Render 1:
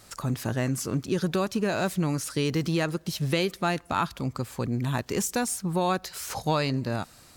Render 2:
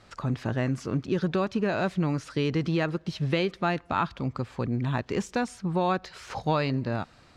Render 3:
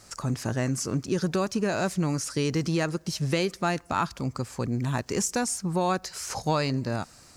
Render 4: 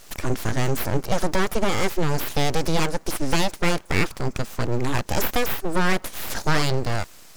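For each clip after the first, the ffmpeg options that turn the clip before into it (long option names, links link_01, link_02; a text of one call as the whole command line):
ffmpeg -i in.wav -af "lowpass=3400" out.wav
ffmpeg -i in.wav -af "aexciter=amount=4.7:drive=8.4:freq=5100" out.wav
ffmpeg -i in.wav -af "aeval=exprs='abs(val(0))':channel_layout=same,volume=7.5dB" out.wav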